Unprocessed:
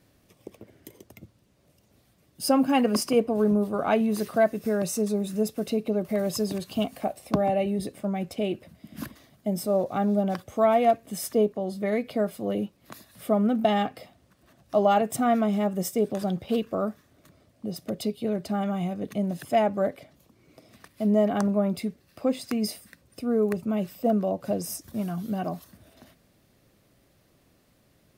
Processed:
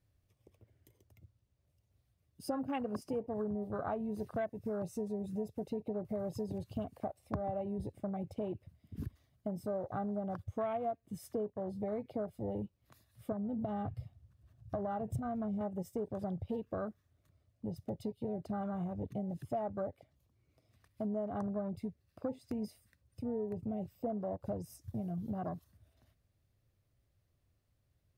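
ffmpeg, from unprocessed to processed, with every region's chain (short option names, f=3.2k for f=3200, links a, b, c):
-filter_complex "[0:a]asettb=1/sr,asplit=3[a][b][c];[a]atrim=end=13.324[d];[b]atrim=start=13.32:end=15.61,asetpts=PTS-STARTPTS,afade=t=in:d=0.004:c=qsin,afade=t=out:st=2.286:d=0.004:c=qsin,equalizer=f=95:t=o:w=2.1:g=12.5,bandreject=f=2k:w=21,acompressor=threshold=-23dB:ratio=4:attack=3.2:release=140:knee=1:detection=peak[e];[c]atrim=start=15.606[f];[d][e]acrossfade=d=0.004:c1=hsin:c2=qsin[g];[g][f]acrossfade=d=0.004:c1=qsin:c2=hsin,afwtdn=0.0282,lowshelf=f=140:t=q:w=1.5:g=12,acompressor=threshold=-32dB:ratio=4,volume=-3.5dB"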